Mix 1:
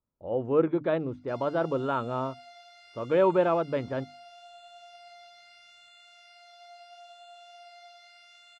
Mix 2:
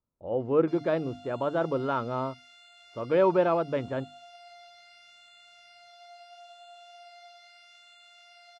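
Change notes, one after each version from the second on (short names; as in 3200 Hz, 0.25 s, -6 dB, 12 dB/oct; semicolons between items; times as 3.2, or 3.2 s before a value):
background: entry -0.60 s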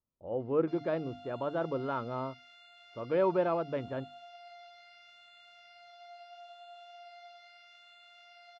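speech -5.0 dB; master: add air absorption 140 m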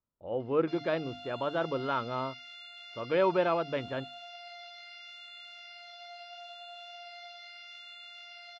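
master: add bell 3600 Hz +11 dB 2.6 oct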